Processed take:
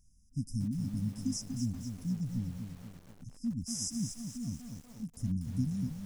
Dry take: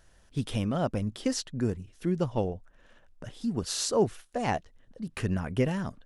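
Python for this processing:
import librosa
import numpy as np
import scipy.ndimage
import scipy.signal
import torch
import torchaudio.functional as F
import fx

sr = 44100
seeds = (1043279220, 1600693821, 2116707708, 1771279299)

y = fx.brickwall_bandstop(x, sr, low_hz=290.0, high_hz=4900.0)
y = fx.echo_crushed(y, sr, ms=241, feedback_pct=55, bits=8, wet_db=-6.5)
y = y * 10.0 ** (-4.0 / 20.0)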